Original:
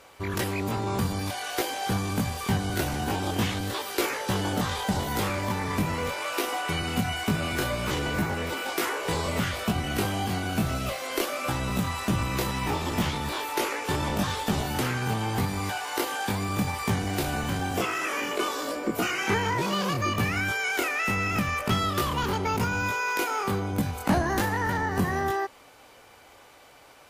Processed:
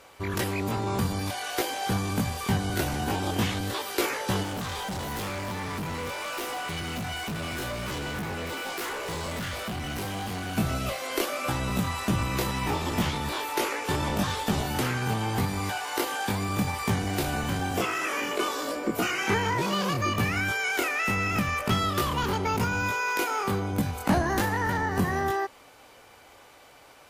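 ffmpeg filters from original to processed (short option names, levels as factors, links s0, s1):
-filter_complex "[0:a]asettb=1/sr,asplit=3[s0][s1][s2];[s0]atrim=end=4.434[s3];[s1]atrim=start=4.43:end=10.57,asetpts=PTS-STARTPTS,afade=t=in:d=0.004:c=qsin,afade=t=out:st=6.136:d=0.004:c=qsin,volume=33.5,asoftclip=hard,volume=0.0299[s4];[s2]atrim=start=10.566[s5];[s3][s4]acrossfade=d=0.004:c1=hsin:c2=qsin[s6];[s6][s5]acrossfade=d=0.004:c1=qsin:c2=hsin"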